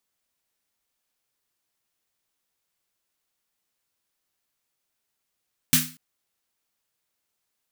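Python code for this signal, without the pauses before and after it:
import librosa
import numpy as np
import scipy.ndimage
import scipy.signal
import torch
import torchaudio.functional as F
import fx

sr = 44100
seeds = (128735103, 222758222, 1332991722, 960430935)

y = fx.drum_snare(sr, seeds[0], length_s=0.24, hz=160.0, second_hz=250.0, noise_db=7.0, noise_from_hz=1400.0, decay_s=0.38, noise_decay_s=0.34)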